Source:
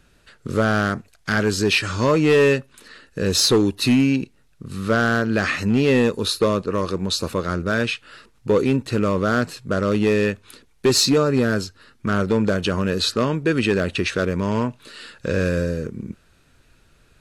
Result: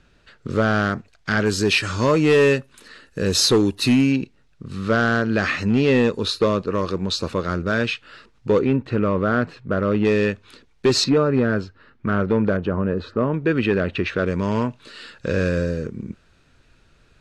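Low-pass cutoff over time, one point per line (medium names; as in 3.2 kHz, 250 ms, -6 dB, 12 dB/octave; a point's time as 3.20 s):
5.4 kHz
from 1.46 s 11 kHz
from 4.12 s 5.7 kHz
from 8.59 s 2.4 kHz
from 10.05 s 5.5 kHz
from 11.04 s 2.3 kHz
from 12.57 s 1.2 kHz
from 13.34 s 2.8 kHz
from 14.26 s 6.6 kHz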